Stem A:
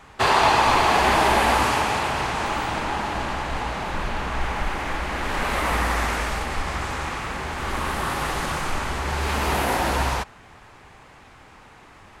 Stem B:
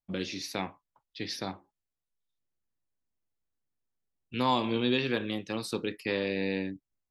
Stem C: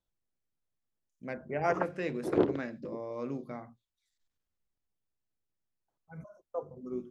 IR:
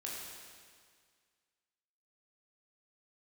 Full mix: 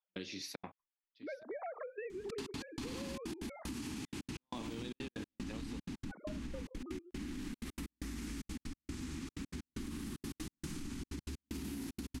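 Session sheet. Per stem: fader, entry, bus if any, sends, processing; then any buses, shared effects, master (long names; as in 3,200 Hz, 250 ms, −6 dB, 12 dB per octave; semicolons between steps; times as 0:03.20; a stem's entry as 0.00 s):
−3.5 dB, 2.10 s, bus A, no send, drawn EQ curve 130 Hz 0 dB, 280 Hz +11 dB, 580 Hz −26 dB, 5,500 Hz −1 dB
−4.0 dB, 0.00 s, bus A, no send, automatic ducking −22 dB, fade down 0.60 s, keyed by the third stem
+2.5 dB, 0.00 s, no bus, no send, three sine waves on the formant tracks; high-pass filter 250 Hz; downward compressor 6 to 1, threshold −40 dBFS, peak gain reduction 17.5 dB
bus A: 0.0 dB, gate pattern "..xxxxx.x.x" 189 BPM −60 dB; brickwall limiter −24.5 dBFS, peak gain reduction 8.5 dB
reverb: not used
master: low-shelf EQ 66 Hz −5 dB; downward compressor 6 to 1, threshold −40 dBFS, peak gain reduction 11 dB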